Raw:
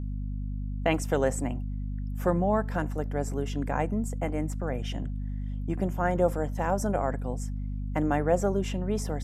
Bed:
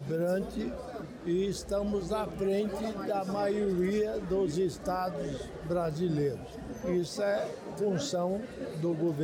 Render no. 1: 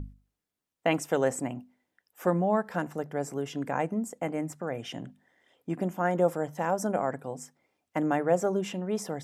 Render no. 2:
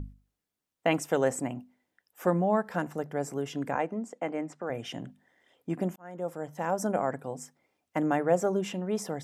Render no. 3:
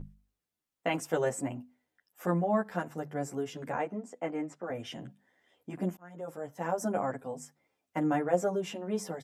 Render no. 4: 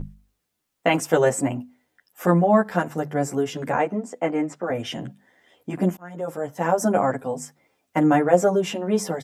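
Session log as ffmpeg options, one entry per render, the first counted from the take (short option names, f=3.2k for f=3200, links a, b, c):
-af "bandreject=f=50:t=h:w=6,bandreject=f=100:t=h:w=6,bandreject=f=150:t=h:w=6,bandreject=f=200:t=h:w=6,bandreject=f=250:t=h:w=6"
-filter_complex "[0:a]asettb=1/sr,asplit=3[a][b][c];[a]atrim=end=3.754[d];[b]atrim=start=3.75:end=4.7,asetpts=PTS-STARTPTS,afade=t=in:d=0.004:c=qsin,afade=t=out:st=0.946:d=0.004:c=qsin,highpass=250,lowpass=5.1k[e];[c]atrim=start=4.696[f];[d][e]acrossfade=d=0.004:c1=hsin:c2=qsin[g];[g][f]acrossfade=d=0.004:c1=qsin:c2=hsin,asplit=2[h][i];[h]atrim=end=5.96,asetpts=PTS-STARTPTS,afade=t=out:st=5.956:d=0.004:c=hsin[j];[i]atrim=start=5.96,asetpts=PTS-STARTPTS,afade=t=in:d=0.88[k];[j][k]concat=n=2:v=0:a=1"
-filter_complex "[0:a]asplit=2[a][b];[b]adelay=10.4,afreqshift=-1.6[c];[a][c]amix=inputs=2:normalize=1"
-af "volume=11dB,alimiter=limit=-3dB:level=0:latency=1"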